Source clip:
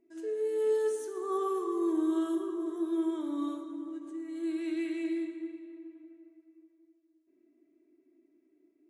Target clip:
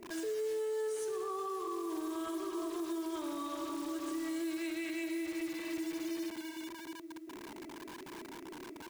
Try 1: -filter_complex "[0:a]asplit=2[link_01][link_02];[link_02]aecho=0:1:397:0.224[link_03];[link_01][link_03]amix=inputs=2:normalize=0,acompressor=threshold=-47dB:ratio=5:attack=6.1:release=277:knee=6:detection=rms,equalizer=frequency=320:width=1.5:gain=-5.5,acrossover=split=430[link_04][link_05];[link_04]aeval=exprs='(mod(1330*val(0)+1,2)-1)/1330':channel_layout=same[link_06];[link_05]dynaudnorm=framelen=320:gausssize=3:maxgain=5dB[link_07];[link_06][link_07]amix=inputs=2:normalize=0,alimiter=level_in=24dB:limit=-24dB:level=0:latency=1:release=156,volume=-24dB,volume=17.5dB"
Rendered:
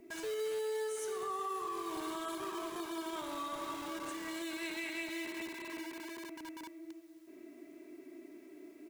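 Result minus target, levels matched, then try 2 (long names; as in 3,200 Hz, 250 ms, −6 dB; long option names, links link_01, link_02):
250 Hz band −5.0 dB
-filter_complex "[0:a]asplit=2[link_01][link_02];[link_02]aecho=0:1:397:0.224[link_03];[link_01][link_03]amix=inputs=2:normalize=0,acompressor=threshold=-47dB:ratio=5:attack=6.1:release=277:knee=6:detection=rms,equalizer=frequency=320:width=1.5:gain=4,acrossover=split=430[link_04][link_05];[link_04]aeval=exprs='(mod(1330*val(0)+1,2)-1)/1330':channel_layout=same[link_06];[link_05]dynaudnorm=framelen=320:gausssize=3:maxgain=5dB[link_07];[link_06][link_07]amix=inputs=2:normalize=0,alimiter=level_in=24dB:limit=-24dB:level=0:latency=1:release=156,volume=-24dB,volume=17.5dB"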